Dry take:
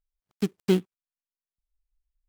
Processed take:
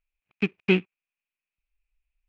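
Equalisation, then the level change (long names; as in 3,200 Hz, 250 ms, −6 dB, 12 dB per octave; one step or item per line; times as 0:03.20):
low-pass with resonance 2,500 Hz, resonance Q 10
0.0 dB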